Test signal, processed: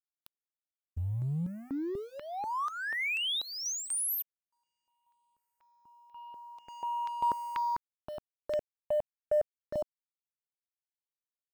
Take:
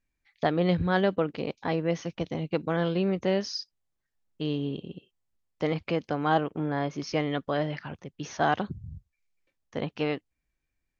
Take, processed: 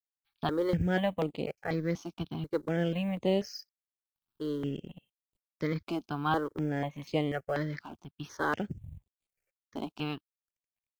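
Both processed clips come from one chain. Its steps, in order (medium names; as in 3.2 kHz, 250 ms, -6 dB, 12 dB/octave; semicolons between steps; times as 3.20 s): companding laws mixed up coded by A; stepped phaser 4.1 Hz 500–5600 Hz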